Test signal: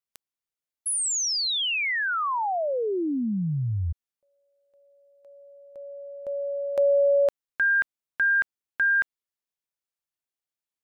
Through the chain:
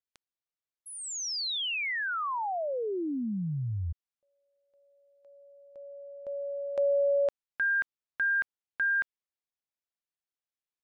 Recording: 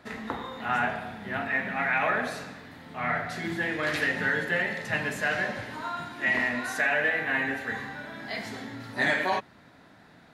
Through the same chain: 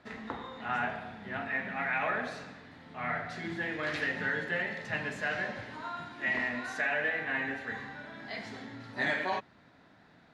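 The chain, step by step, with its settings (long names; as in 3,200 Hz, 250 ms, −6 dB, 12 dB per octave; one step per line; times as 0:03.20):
low-pass filter 6,100 Hz 12 dB per octave
level −5.5 dB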